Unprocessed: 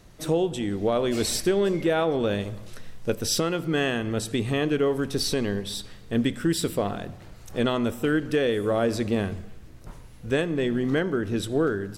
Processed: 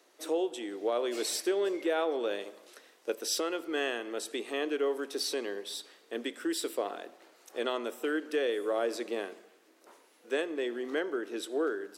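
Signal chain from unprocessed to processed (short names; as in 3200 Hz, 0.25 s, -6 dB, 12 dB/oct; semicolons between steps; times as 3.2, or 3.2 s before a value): steep high-pass 310 Hz 36 dB/oct; gain -6 dB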